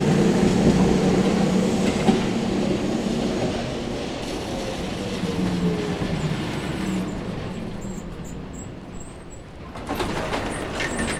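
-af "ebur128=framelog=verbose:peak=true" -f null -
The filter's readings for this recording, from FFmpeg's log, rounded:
Integrated loudness:
  I:         -23.5 LUFS
  Threshold: -34.2 LUFS
Loudness range:
  LRA:        10.7 LU
  Threshold: -45.3 LUFS
  LRA low:   -31.4 LUFS
  LRA high:  -20.7 LUFS
True peak:
  Peak:       -4.4 dBFS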